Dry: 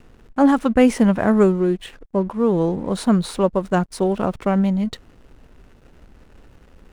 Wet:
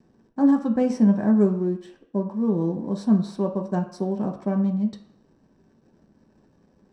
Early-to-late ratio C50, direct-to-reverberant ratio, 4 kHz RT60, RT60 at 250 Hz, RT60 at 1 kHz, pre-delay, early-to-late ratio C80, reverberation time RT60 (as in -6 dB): 10.5 dB, 2.0 dB, 0.60 s, 0.45 s, 0.65 s, 3 ms, 13.0 dB, 0.65 s